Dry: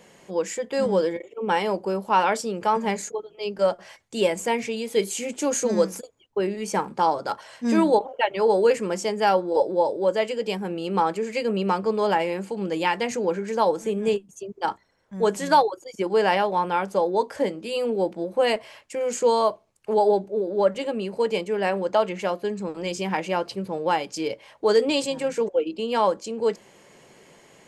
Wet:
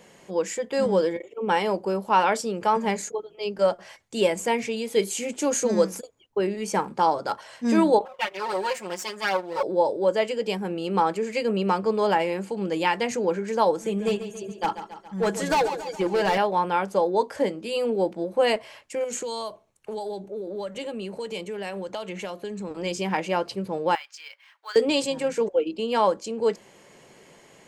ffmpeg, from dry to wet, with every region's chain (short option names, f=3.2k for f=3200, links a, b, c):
-filter_complex "[0:a]asettb=1/sr,asplit=3[a][b][c];[a]atrim=end=8.054[d];[b]atrim=start=8.05:end=9.63,asetpts=PTS-STARTPTS,afade=t=in:d=0.004:c=qsin,afade=t=out:st=1.576:d=0.004:c=qsin,aeval=exprs='if(lt(val(0),0),0.251*val(0),val(0))':c=same,highpass=f=1k:p=1,aecho=1:1:5.5:0.9,atrim=end_sample=69678[e];[c]atrim=start=9.626[f];[d][e]acrossfade=d=0.004:c1=hsin:c2=qsin[g];[g][f]acrossfade=d=0.004:c1=qsin:c2=hsin,asettb=1/sr,asplit=3[h][i][j];[h]atrim=end=13.854[k];[i]atrim=start=13.85:end=16.38,asetpts=PTS-STARTPTS,afade=t=in:d=0.004:c=qsin,afade=t=out:st=2.526:d=0.004:c=qsin,aecho=1:1:6:0.5,atrim=end_sample=111573,asoftclip=type=hard:threshold=-18.5dB,aecho=1:1:139|278|417|556|695|834:0.266|0.152|0.0864|0.0493|0.0281|0.016,atrim=end_sample=111573[l];[j]atrim=start=16.376[m];[k][l]acrossfade=d=0.004:c1=hsin:c2=qsin[n];[n][m]acrossfade=d=0.004:c1=qsin:c2=hsin,asettb=1/sr,asplit=3[o][p][q];[o]atrim=end=19.044[r];[p]atrim=start=19.04:end=22.71,asetpts=PTS-STARTPTS,afade=t=in:d=0.004:c=qsin,afade=t=out:st=3.666:d=0.004:c=qsin,bandreject=f=4.9k:w=7.8,acrossover=split=120|3000[s][t][u];[t]acompressor=threshold=-30dB:ratio=6:attack=3.2:release=140:knee=2.83:detection=peak[v];[s][v][u]amix=inputs=3:normalize=0[w];[q]atrim=start=22.706[x];[r][w]acrossfade=d=0.004:c1=hsin:c2=qsin[y];[y][x]acrossfade=d=0.004:c1=qsin:c2=hsin,asettb=1/sr,asplit=3[z][aa][ab];[z]atrim=end=23.954[ac];[aa]atrim=start=23.95:end=24.76,asetpts=PTS-STARTPTS,afade=t=in:d=0.004:c=qsin,afade=t=out:st=0.806:d=0.004:c=qsin,highpass=f=1.3k:w=0.5412,highpass=f=1.3k:w=1.3066,aemphasis=mode=reproduction:type=75kf,acrusher=bits=6:mode=log:mix=0:aa=0.000001[ad];[ab]atrim=start=24.756[ae];[ac][ad]acrossfade=d=0.004:c1=hsin:c2=qsin[af];[af][ae]acrossfade=d=0.004:c1=qsin:c2=hsin"